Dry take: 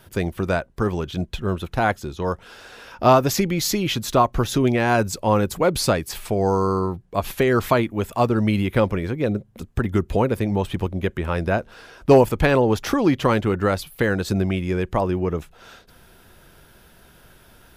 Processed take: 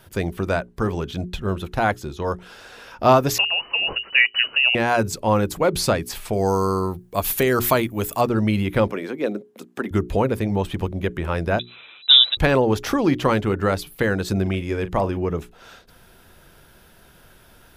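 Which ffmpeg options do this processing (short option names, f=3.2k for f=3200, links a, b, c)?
-filter_complex "[0:a]asettb=1/sr,asplit=3[a][b][c];[a]atrim=end=3.384[d];[b]atrim=start=3.38:end=4.75,asetpts=PTS-STARTPTS,afade=t=in:d=0.004:c=qsin,afade=t=out:st=1.366:d=0.004:c=qsin,lowpass=f=2.6k:t=q:w=0.5098,lowpass=f=2.6k:t=q:w=0.6013,lowpass=f=2.6k:t=q:w=0.9,lowpass=f=2.6k:t=q:w=2.563,afreqshift=-3000[e];[c]atrim=start=4.746[f];[d][e]acrossfade=d=0.004:c1=hsin:c2=qsin[g];[g][f]acrossfade=d=0.004:c1=qsin:c2=hsin,asettb=1/sr,asplit=3[h][i][j];[h]atrim=end=6.334[k];[i]atrim=start=6.33:end=8.21,asetpts=PTS-STARTPTS,afade=t=in:d=0.004:c=qsin,afade=t=out:st=1.876:d=0.004:c=qsin,aemphasis=mode=production:type=50fm[l];[j]atrim=start=8.206[m];[k][l]acrossfade=d=0.004:c1=hsin:c2=qsin[n];[n][m]acrossfade=d=0.004:c1=qsin:c2=hsin,asettb=1/sr,asplit=3[o][p][q];[o]atrim=end=8.874[r];[p]atrim=start=8.87:end=9.91,asetpts=PTS-STARTPTS,afade=t=in:d=0.004:c=qsin,afade=t=out:st=1.036:d=0.004:c=qsin,highpass=f=230:w=0.5412,highpass=f=230:w=1.3066[s];[q]atrim=start=9.906[t];[r][s]acrossfade=d=0.004:c1=hsin:c2=qsin[u];[u][t]acrossfade=d=0.004:c1=qsin:c2=hsin,asettb=1/sr,asplit=3[v][w][x];[v]atrim=end=11.594[y];[w]atrim=start=11.59:end=12.37,asetpts=PTS-STARTPTS,afade=t=in:d=0.004:c=qsin,afade=t=out:st=0.776:d=0.004:c=qsin,lowpass=f=3.4k:t=q:w=0.5098,lowpass=f=3.4k:t=q:w=0.6013,lowpass=f=3.4k:t=q:w=0.9,lowpass=f=3.4k:t=q:w=2.563,afreqshift=-4000[z];[x]atrim=start=12.366[aa];[y][z]acrossfade=d=0.004:c1=hsin:c2=qsin[ab];[ab][aa]acrossfade=d=0.004:c1=qsin:c2=hsin,asettb=1/sr,asplit=3[ac][ad][ae];[ac]atrim=end=14.424[af];[ad]atrim=start=14.42:end=15.17,asetpts=PTS-STARTPTS,afade=t=in:d=0.004:c=qsin,afade=t=out:st=0.746:d=0.004:c=qsin,asplit=2[ag][ah];[ah]adelay=40,volume=-13dB[ai];[ag][ai]amix=inputs=2:normalize=0,atrim=end_sample=33075[aj];[ae]atrim=start=15.166[ak];[af][aj]acrossfade=d=0.004:c1=hsin:c2=qsin[al];[al][ak]acrossfade=d=0.004:c1=qsin:c2=hsin,bandreject=f=60:t=h:w=6,bandreject=f=120:t=h:w=6,bandreject=f=180:t=h:w=6,bandreject=f=240:t=h:w=6,bandreject=f=300:t=h:w=6,bandreject=f=360:t=h:w=6,bandreject=f=420:t=h:w=6"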